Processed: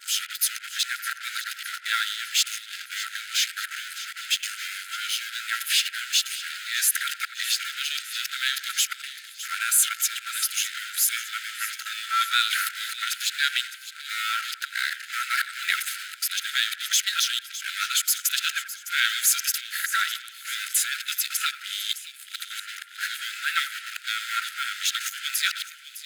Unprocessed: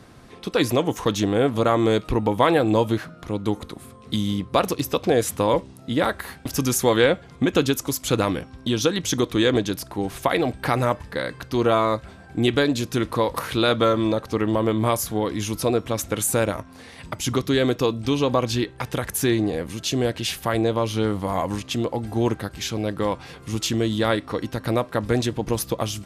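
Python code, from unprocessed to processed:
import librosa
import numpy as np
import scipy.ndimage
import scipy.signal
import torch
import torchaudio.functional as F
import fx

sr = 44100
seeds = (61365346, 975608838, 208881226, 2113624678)

p1 = x[::-1].copy()
p2 = fx.vibrato(p1, sr, rate_hz=2.3, depth_cents=18.0)
p3 = fx.fuzz(p2, sr, gain_db=40.0, gate_db=-36.0)
p4 = p2 + (p3 * 10.0 ** (-10.0 / 20.0))
p5 = fx.brickwall_highpass(p4, sr, low_hz=1300.0)
p6 = fx.notch(p5, sr, hz=5700.0, q=12.0)
y = p6 + fx.echo_split(p6, sr, split_hz=2300.0, low_ms=88, high_ms=609, feedback_pct=52, wet_db=-13.5, dry=0)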